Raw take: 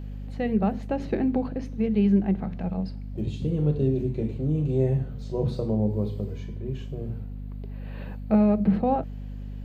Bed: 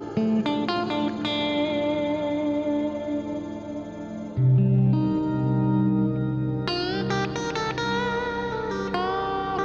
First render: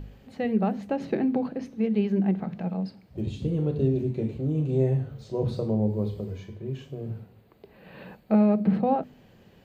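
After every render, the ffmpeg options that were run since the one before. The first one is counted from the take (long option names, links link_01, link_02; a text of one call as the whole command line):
ffmpeg -i in.wav -af "bandreject=frequency=50:width_type=h:width=4,bandreject=frequency=100:width_type=h:width=4,bandreject=frequency=150:width_type=h:width=4,bandreject=frequency=200:width_type=h:width=4,bandreject=frequency=250:width_type=h:width=4" out.wav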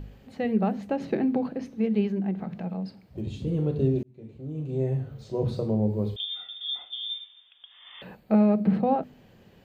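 ffmpeg -i in.wav -filter_complex "[0:a]asettb=1/sr,asplit=3[link_01][link_02][link_03];[link_01]atrim=end=2.084[link_04];[link_02]atrim=start=2.08:end=3.47,asetpts=PTS-STARTPTS,afade=type=in:duration=0.004:curve=qsin,afade=type=out:start_time=1.386:duration=0.004:curve=qsin,acompressor=threshold=-32dB:ratio=1.5:attack=3.2:release=140:knee=1:detection=peak[link_05];[link_03]atrim=start=3.466[link_06];[link_04][link_05]acrossfade=duration=0.004:curve1=hsin:curve2=qsin[link_07];[link_07][link_06]acrossfade=duration=0.004:curve1=qsin:curve2=hsin,asettb=1/sr,asplit=3[link_08][link_09][link_10];[link_08]atrim=end=6.164[link_11];[link_09]atrim=start=6.16:end=8.02,asetpts=PTS-STARTPTS,afade=type=in:duration=0.004:curve=qsin,afade=type=out:start_time=1.856:duration=0.004:curve=qsin,lowpass=frequency=3100:width_type=q:width=0.5098,lowpass=frequency=3100:width_type=q:width=0.6013,lowpass=frequency=3100:width_type=q:width=0.9,lowpass=frequency=3100:width_type=q:width=2.563,afreqshift=-3700[link_12];[link_10]atrim=start=8.016[link_13];[link_11][link_12]acrossfade=duration=0.004:curve1=hsin:curve2=qsin[link_14];[link_14][link_13]acrossfade=duration=0.004:curve1=qsin:curve2=hsin,asplit=2[link_15][link_16];[link_15]atrim=end=4.03,asetpts=PTS-STARTPTS,afade=type=out:start_time=4.026:duration=0.004:curve=hsin[link_17];[link_16]atrim=start=4.03,asetpts=PTS-STARTPTS,afade=type=in:duration=1.25[link_18];[link_17][link_18]concat=n=2:v=0:a=1" out.wav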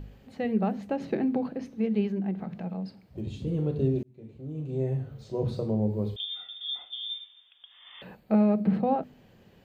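ffmpeg -i in.wav -af "volume=-2dB" out.wav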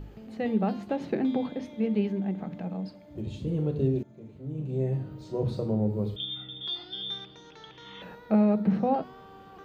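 ffmpeg -i in.wav -i bed.wav -filter_complex "[1:a]volume=-23dB[link_01];[0:a][link_01]amix=inputs=2:normalize=0" out.wav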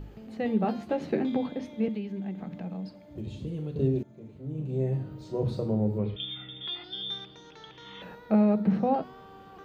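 ffmpeg -i in.wav -filter_complex "[0:a]asettb=1/sr,asplit=3[link_01][link_02][link_03];[link_01]atrim=end=0.634[link_04];[link_02]atrim=start=0.63:end=1.37,asetpts=PTS-STARTPTS,afade=type=in:duration=0.004:curve=qsin,afade=type=out:start_time=0.736:duration=0.004:curve=qsin,asplit=2[link_05][link_06];[link_06]adelay=13,volume=-5.5dB[link_07];[link_05][link_07]amix=inputs=2:normalize=0,atrim=end_sample=32634[link_08];[link_03]atrim=start=1.366[link_09];[link_04][link_08]acrossfade=duration=0.004:curve1=hsin:curve2=qsin[link_10];[link_10][link_09]acrossfade=duration=0.004:curve1=qsin:curve2=hsin,asettb=1/sr,asplit=3[link_11][link_12][link_13];[link_11]atrim=end=1.884[link_14];[link_12]atrim=start=1.88:end=3.76,asetpts=PTS-STARTPTS,afade=type=in:duration=0.004:curve=qsin,afade=type=out:start_time=1.876:duration=0.004:curve=qsin,acrossover=split=290|1700[link_15][link_16][link_17];[link_15]acompressor=threshold=-34dB:ratio=4[link_18];[link_16]acompressor=threshold=-43dB:ratio=4[link_19];[link_17]acompressor=threshold=-52dB:ratio=4[link_20];[link_18][link_19][link_20]amix=inputs=3:normalize=0[link_21];[link_13]atrim=start=3.756[link_22];[link_14][link_21]acrossfade=duration=0.004:curve1=hsin:curve2=qsin[link_23];[link_23][link_22]acrossfade=duration=0.004:curve1=qsin:curve2=hsin,asettb=1/sr,asplit=3[link_24][link_25][link_26];[link_24]atrim=end=5.984[link_27];[link_25]atrim=start=5.98:end=6.84,asetpts=PTS-STARTPTS,afade=type=in:duration=0.004:curve=qsin,afade=type=out:start_time=0.856:duration=0.004:curve=qsin,lowpass=frequency=2400:width_type=q:width=2.9[link_28];[link_26]atrim=start=6.836[link_29];[link_27][link_28]acrossfade=duration=0.004:curve1=hsin:curve2=qsin[link_30];[link_30][link_29]acrossfade=duration=0.004:curve1=qsin:curve2=hsin" out.wav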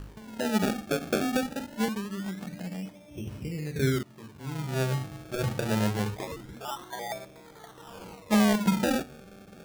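ffmpeg -i in.wav -af "acrusher=samples=30:mix=1:aa=0.000001:lfo=1:lforange=30:lforate=0.24" out.wav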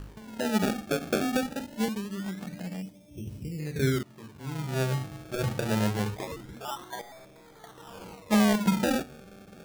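ffmpeg -i in.wav -filter_complex "[0:a]asettb=1/sr,asplit=3[link_01][link_02][link_03];[link_01]atrim=end=1.614[link_04];[link_02]atrim=start=1.61:end=2.16,asetpts=PTS-STARTPTS,afade=type=in:duration=0.004:curve=qsin,afade=type=out:start_time=0.546:duration=0.004:curve=qsin,equalizer=frequency=1300:width=1.5:gain=-6[link_05];[link_03]atrim=start=2.156[link_06];[link_04][link_05]acrossfade=duration=0.004:curve1=hsin:curve2=qsin[link_07];[link_07][link_06]acrossfade=duration=0.004:curve1=qsin:curve2=hsin,asettb=1/sr,asplit=3[link_08][link_09][link_10];[link_08]atrim=end=2.824[link_11];[link_09]atrim=start=2.82:end=3.6,asetpts=PTS-STARTPTS,afade=type=in:duration=0.004:curve=qsin,afade=type=out:start_time=0.776:duration=0.004:curve=qsin,equalizer=frequency=1300:width_type=o:width=2.4:gain=-13[link_12];[link_10]atrim=start=3.596[link_13];[link_11][link_12]acrossfade=duration=0.004:curve1=hsin:curve2=qsin[link_14];[link_14][link_13]acrossfade=duration=0.004:curve1=qsin:curve2=hsin,asettb=1/sr,asplit=3[link_15][link_16][link_17];[link_15]atrim=end=7.014[link_18];[link_16]atrim=start=7.01:end=7.64,asetpts=PTS-STARTPTS,afade=type=in:duration=0.004:curve=qsin,afade=type=out:start_time=0.626:duration=0.004:curve=qsin,aeval=exprs='(tanh(224*val(0)+0.3)-tanh(0.3))/224':channel_layout=same[link_19];[link_17]atrim=start=7.636[link_20];[link_18][link_19]acrossfade=duration=0.004:curve1=hsin:curve2=qsin[link_21];[link_21][link_20]acrossfade=duration=0.004:curve1=qsin:curve2=hsin" out.wav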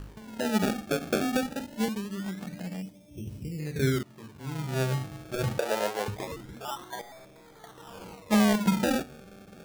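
ffmpeg -i in.wav -filter_complex "[0:a]asettb=1/sr,asplit=3[link_01][link_02][link_03];[link_01]atrim=end=5.584[link_04];[link_02]atrim=start=5.58:end=6.08,asetpts=PTS-STARTPTS,afade=type=in:duration=0.004:curve=qsin,afade=type=out:start_time=0.496:duration=0.004:curve=qsin,highpass=frequency=530:width_type=q:width=1.9[link_05];[link_03]atrim=start=6.076[link_06];[link_04][link_05]acrossfade=duration=0.004:curve1=hsin:curve2=qsin[link_07];[link_07][link_06]acrossfade=duration=0.004:curve1=qsin:curve2=hsin" out.wav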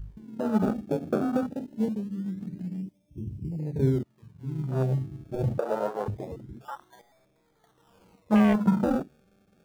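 ffmpeg -i in.wav -af "afwtdn=0.0282,lowshelf=frequency=270:gain=4" out.wav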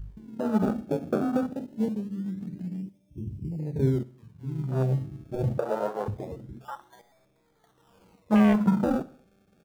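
ffmpeg -i in.wav -af "aecho=1:1:62|124|186|248:0.106|0.053|0.0265|0.0132" out.wav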